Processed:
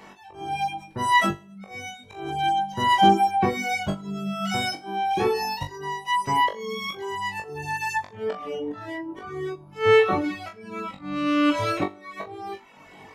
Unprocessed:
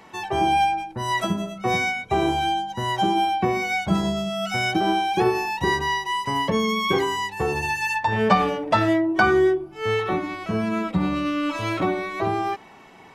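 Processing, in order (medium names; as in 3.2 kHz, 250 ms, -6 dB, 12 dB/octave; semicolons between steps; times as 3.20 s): slow attack 707 ms; flutter echo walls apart 3.5 m, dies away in 0.41 s; reverb removal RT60 0.86 s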